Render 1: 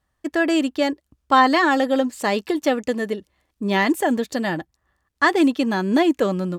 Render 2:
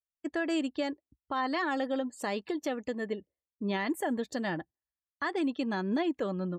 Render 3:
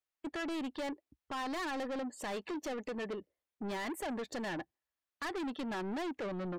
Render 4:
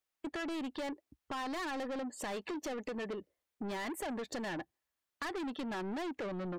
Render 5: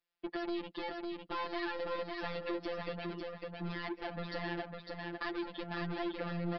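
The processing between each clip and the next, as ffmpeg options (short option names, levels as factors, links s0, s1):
-af "alimiter=limit=0.2:level=0:latency=1:release=228,afftdn=nr=30:nf=-46,volume=0.376"
-filter_complex "[0:a]bass=f=250:g=-8,treble=f=4000:g=-8,asplit=2[s0][s1];[s1]alimiter=level_in=2.11:limit=0.0631:level=0:latency=1:release=66,volume=0.473,volume=0.891[s2];[s0][s2]amix=inputs=2:normalize=0,asoftclip=type=tanh:threshold=0.0168"
-af "acompressor=threshold=0.00891:ratio=6,volume=1.5"
-filter_complex "[0:a]afftfilt=real='hypot(re,im)*cos(PI*b)':imag='0':win_size=1024:overlap=0.75,asplit=2[s0][s1];[s1]aecho=0:1:553|1106|1659|2212:0.668|0.18|0.0487|0.0132[s2];[s0][s2]amix=inputs=2:normalize=0,aresample=11025,aresample=44100,volume=1.5"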